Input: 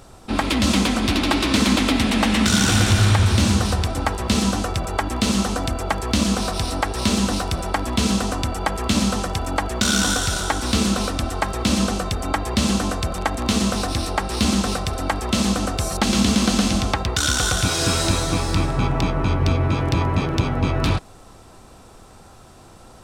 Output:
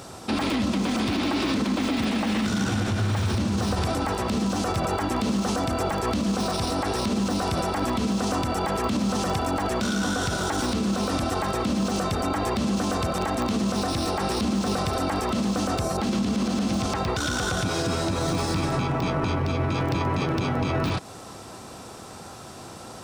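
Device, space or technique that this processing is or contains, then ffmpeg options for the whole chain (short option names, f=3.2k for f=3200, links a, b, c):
broadcast voice chain: -af "highpass=110,deesser=0.75,acompressor=threshold=-24dB:ratio=6,equalizer=f=5.3k:t=o:w=0.77:g=3,alimiter=limit=-23dB:level=0:latency=1:release=29,volume=6dB"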